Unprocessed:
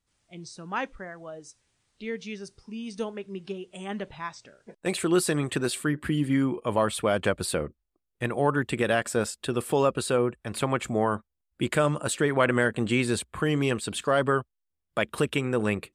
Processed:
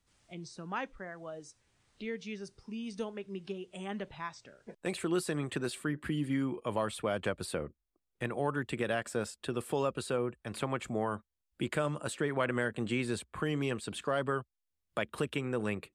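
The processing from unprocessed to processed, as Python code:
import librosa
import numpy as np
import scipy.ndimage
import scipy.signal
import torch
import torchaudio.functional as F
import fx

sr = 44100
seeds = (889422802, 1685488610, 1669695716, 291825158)

y = fx.high_shelf(x, sr, hz=8100.0, db=-4.0)
y = fx.band_squash(y, sr, depth_pct=40)
y = F.gain(torch.from_numpy(y), -8.0).numpy()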